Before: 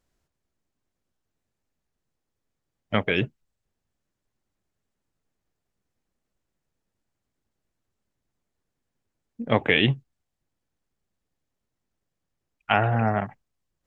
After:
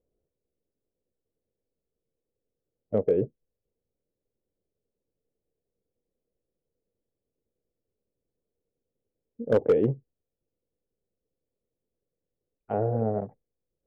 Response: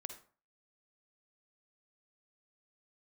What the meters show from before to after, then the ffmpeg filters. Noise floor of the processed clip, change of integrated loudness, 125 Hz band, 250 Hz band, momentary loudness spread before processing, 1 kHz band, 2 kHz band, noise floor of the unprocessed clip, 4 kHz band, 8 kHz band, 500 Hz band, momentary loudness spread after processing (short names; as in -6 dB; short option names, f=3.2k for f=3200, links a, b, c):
under -85 dBFS, -3.0 dB, -5.5 dB, -3.5 dB, 15 LU, -10.5 dB, -22.0 dB, -83 dBFS, under -25 dB, n/a, +3.0 dB, 15 LU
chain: -af "lowpass=f=480:t=q:w=4.9,volume=8dB,asoftclip=hard,volume=-8dB,volume=-6dB"